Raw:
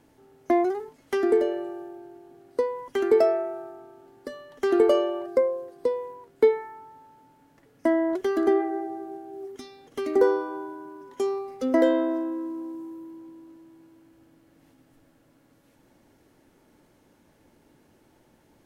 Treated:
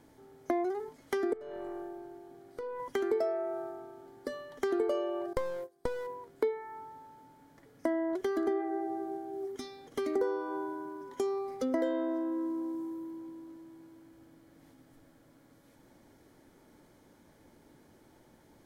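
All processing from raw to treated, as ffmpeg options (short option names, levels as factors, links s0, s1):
-filter_complex "[0:a]asettb=1/sr,asplit=3[s0][s1][s2];[s0]atrim=end=1.334[s3];[s1]atrim=start=1.33:end=2.8,asetpts=PTS-STARTPTS,afade=t=in:d=0.004:c=qsin,afade=t=out:st=1.466:d=0.004:c=qsin,bandreject=f=50:t=h:w=6,bandreject=f=100:t=h:w=6,bandreject=f=150:t=h:w=6,bandreject=f=200:t=h:w=6,bandreject=f=250:t=h:w=6,bandreject=f=300:t=h:w=6,bandreject=f=350:t=h:w=6,bandreject=f=400:t=h:w=6,bandreject=f=450:t=h:w=6,bandreject=f=500:t=h:w=6,acompressor=threshold=0.02:ratio=6:attack=3.2:release=140:knee=1:detection=peak,aeval=exprs='(tanh(39.8*val(0)+0.2)-tanh(0.2))/39.8':c=same[s4];[s2]atrim=start=2.796[s5];[s3][s4]acrossfade=d=0.004:c1=hsin:c2=qsin[s6];[s6][s5]acrossfade=d=0.004:c1=qsin:c2=hsin,asettb=1/sr,asplit=3[s7][s8][s9];[s7]atrim=end=5.334[s10];[s8]atrim=start=5.33:end=6.07,asetpts=PTS-STARTPTS,afade=t=in:d=0.004:c=qsin,afade=t=out:st=0.736:d=0.004:c=qsin,agate=range=0.112:threshold=0.0112:ratio=16:release=100:detection=peak,aeval=exprs='clip(val(0),-1,0.0178)':c=same,highshelf=f=5000:g=9[s11];[s9]atrim=start=6.066[s12];[s10][s11]acrossfade=d=0.004:c1=hsin:c2=qsin[s13];[s13][s12]acrossfade=d=0.004:c1=qsin:c2=hsin,bandreject=f=2700:w=7.3,acompressor=threshold=0.0282:ratio=3"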